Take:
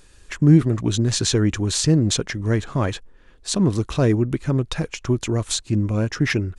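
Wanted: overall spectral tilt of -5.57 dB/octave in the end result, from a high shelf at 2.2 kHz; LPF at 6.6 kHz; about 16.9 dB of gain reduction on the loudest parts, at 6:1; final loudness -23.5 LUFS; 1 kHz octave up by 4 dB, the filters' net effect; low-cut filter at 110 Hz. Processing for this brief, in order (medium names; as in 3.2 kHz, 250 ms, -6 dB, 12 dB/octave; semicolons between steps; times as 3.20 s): high-pass 110 Hz; low-pass 6.6 kHz; peaking EQ 1 kHz +7 dB; treble shelf 2.2 kHz -8.5 dB; compression 6:1, threshold -27 dBFS; trim +8.5 dB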